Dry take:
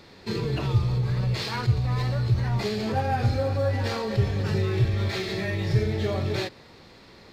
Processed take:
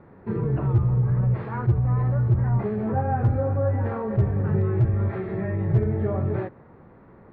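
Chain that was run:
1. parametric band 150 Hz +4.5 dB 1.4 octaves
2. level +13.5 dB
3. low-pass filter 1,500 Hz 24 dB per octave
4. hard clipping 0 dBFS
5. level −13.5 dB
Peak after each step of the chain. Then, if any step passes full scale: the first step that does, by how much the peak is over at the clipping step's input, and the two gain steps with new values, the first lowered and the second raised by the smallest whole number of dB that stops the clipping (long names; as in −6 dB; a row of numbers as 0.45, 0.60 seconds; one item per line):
−8.5, +5.0, +5.0, 0.0, −13.5 dBFS
step 2, 5.0 dB
step 2 +8.5 dB, step 5 −8.5 dB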